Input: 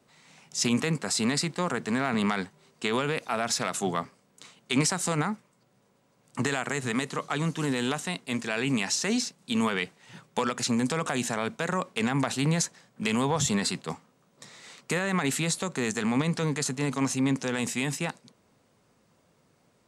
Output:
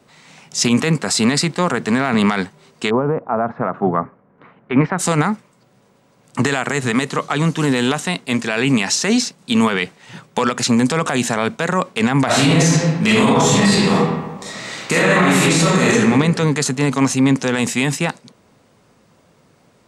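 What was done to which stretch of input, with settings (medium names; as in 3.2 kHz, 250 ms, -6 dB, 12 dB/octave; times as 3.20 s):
2.89–4.98 s: low-pass 1 kHz -> 2.1 kHz 24 dB/octave
12.25–15.94 s: reverb throw, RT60 1.2 s, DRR -8.5 dB
whole clip: treble shelf 6.8 kHz -4.5 dB; loudness maximiser +15.5 dB; trim -4 dB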